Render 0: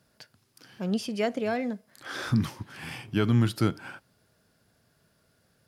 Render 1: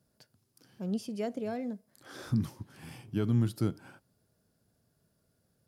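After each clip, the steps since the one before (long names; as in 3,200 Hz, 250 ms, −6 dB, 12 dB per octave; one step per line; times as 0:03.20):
parametric band 2,100 Hz −10.5 dB 2.8 octaves
level −4 dB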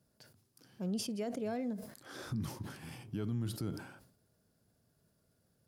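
brickwall limiter −28.5 dBFS, peak gain reduction 10 dB
level that may fall only so fast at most 85 dB per second
level −1 dB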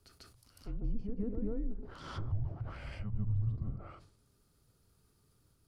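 backwards echo 145 ms −5 dB
treble cut that deepens with the level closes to 580 Hz, closed at −36 dBFS
frequency shifter −220 Hz
level +3.5 dB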